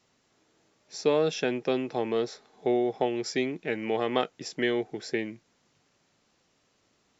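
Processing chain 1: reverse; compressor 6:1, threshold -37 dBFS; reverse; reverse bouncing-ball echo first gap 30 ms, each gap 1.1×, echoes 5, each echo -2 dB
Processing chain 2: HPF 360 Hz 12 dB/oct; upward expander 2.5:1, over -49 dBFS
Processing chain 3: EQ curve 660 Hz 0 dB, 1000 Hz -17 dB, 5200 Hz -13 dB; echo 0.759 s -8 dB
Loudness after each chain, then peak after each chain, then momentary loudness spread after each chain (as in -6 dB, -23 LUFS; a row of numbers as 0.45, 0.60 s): -37.0, -37.5, -30.0 LUFS; -22.5, -14.5, -12.5 dBFS; 6, 16, 12 LU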